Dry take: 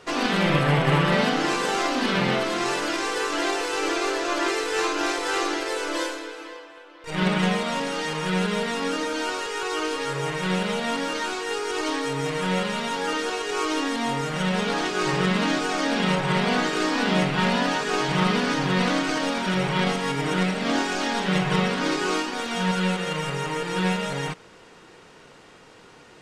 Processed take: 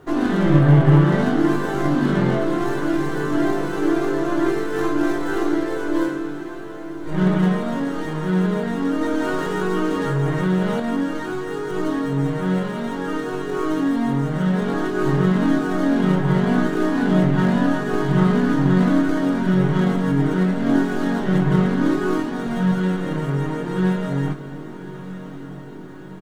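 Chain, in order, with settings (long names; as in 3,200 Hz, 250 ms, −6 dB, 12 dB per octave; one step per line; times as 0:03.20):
stylus tracing distortion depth 0.07 ms
tilt shelving filter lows +10 dB
double-tracking delay 21 ms −8 dB
bit reduction 11 bits
thirty-one-band graphic EQ 200 Hz −6 dB, 315 Hz +4 dB, 500 Hz −9 dB, 1,600 Hz +4 dB, 2,500 Hz −6 dB, 5,000 Hz −5 dB
feedback delay with all-pass diffusion 1,230 ms, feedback 60%, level −14 dB
0:09.01–0:10.80: envelope flattener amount 50%
level −1 dB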